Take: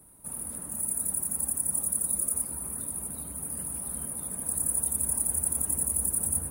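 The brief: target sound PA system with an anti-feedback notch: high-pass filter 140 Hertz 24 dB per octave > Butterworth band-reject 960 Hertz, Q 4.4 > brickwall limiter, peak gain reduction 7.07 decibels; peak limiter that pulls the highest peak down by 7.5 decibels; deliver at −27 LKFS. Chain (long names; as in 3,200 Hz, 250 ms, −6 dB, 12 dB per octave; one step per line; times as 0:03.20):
brickwall limiter −19 dBFS
high-pass filter 140 Hz 24 dB per octave
Butterworth band-reject 960 Hz, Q 4.4
level +7 dB
brickwall limiter −18.5 dBFS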